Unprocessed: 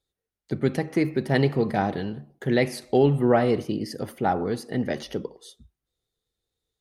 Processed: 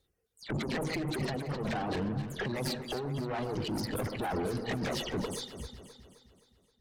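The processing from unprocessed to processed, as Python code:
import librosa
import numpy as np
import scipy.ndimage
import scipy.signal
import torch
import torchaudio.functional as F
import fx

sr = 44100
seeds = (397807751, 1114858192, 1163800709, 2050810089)

y = fx.spec_delay(x, sr, highs='early', ms=118)
y = fx.clip_asym(y, sr, top_db=-27.0, bottom_db=-13.0)
y = fx.low_shelf(y, sr, hz=460.0, db=3.5)
y = fx.over_compress(y, sr, threshold_db=-30.0, ratio=-1.0)
y = fx.tube_stage(y, sr, drive_db=34.0, bias=0.65)
y = fx.dereverb_blind(y, sr, rt60_s=1.3)
y = fx.echo_alternate(y, sr, ms=131, hz=1400.0, feedback_pct=70, wet_db=-7.5)
y = y * 10.0 ** (5.0 / 20.0)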